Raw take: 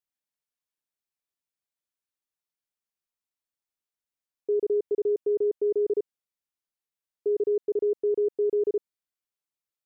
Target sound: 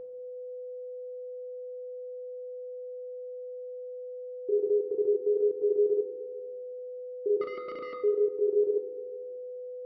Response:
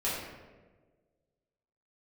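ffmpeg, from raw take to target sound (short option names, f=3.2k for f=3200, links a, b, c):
-filter_complex "[0:a]asettb=1/sr,asplit=3[a][b][c];[a]atrim=end=7.414[d];[b]atrim=start=7.41:end=8,asetpts=PTS-STARTPTS,afade=t=in:d=0.004:c=qsin,afade=t=out:st=0.586:d=0.004:c=qsin,aeval=exprs='0.0376*(abs(mod(val(0)/0.0376+3,4)-2)-1)':c=same[e];[c]atrim=start=7.996[f];[d][e]acrossfade=d=0.004:c1=hsin:c2=qsin[g];[g][f]acrossfade=d=0.004:c1=qsin:c2=hsin,bandreject=f=248.4:t=h:w=4,bandreject=f=496.8:t=h:w=4,bandreject=f=745.2:t=h:w=4,bandreject=f=993.6:t=h:w=4,bandreject=f=1.242k:t=h:w=4,bandreject=f=1.4904k:t=h:w=4,bandreject=f=1.7388k:t=h:w=4,bandreject=f=1.9872k:t=h:w=4,bandreject=f=2.2356k:t=h:w=4,bandreject=f=2.484k:t=h:w=4,bandreject=f=2.7324k:t=h:w=4,bandreject=f=2.9808k:t=h:w=4,bandreject=f=3.2292k:t=h:w=4,bandreject=f=3.4776k:t=h:w=4,bandreject=f=3.726k:t=h:w=4,bandreject=f=3.9744k:t=h:w=4,bandreject=f=4.2228k:t=h:w=4,bandreject=f=4.4712k:t=h:w=4,bandreject=f=4.7196k:t=h:w=4,bandreject=f=4.968k:t=h:w=4,bandreject=f=5.2164k:t=h:w=4,bandreject=f=5.4648k:t=h:w=4,bandreject=f=5.7132k:t=h:w=4,bandreject=f=5.9616k:t=h:w=4,bandreject=f=6.21k:t=h:w=4,bandreject=f=6.4584k:t=h:w=4,bandreject=f=6.7068k:t=h:w=4,bandreject=f=6.9552k:t=h:w=4,bandreject=f=7.2036k:t=h:w=4,flanger=delay=0.3:depth=6.6:regen=-43:speed=1.8:shape=sinusoidal,aeval=exprs='val(0)+0.0126*sin(2*PI*500*n/s)':c=same,asplit=2[h][i];[1:a]atrim=start_sample=2205[j];[i][j]afir=irnorm=-1:irlink=0,volume=-13.5dB[k];[h][k]amix=inputs=2:normalize=0,aresample=11025,aresample=44100,volume=-1.5dB"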